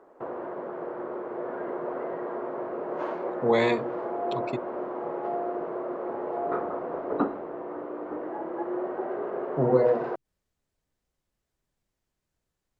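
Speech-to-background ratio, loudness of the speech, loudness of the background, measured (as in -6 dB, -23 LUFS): 7.0 dB, -26.0 LUFS, -33.0 LUFS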